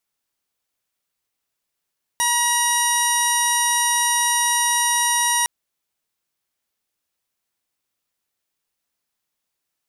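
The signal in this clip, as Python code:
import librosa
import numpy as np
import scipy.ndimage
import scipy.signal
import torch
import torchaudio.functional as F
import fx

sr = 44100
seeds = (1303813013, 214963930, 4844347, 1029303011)

y = fx.additive_steady(sr, length_s=3.26, hz=956.0, level_db=-22.0, upper_db=(-3, -8.0, -7, -19.0, -1.5, -14.5, -13.5, -12, 0, -19.0, -10.0))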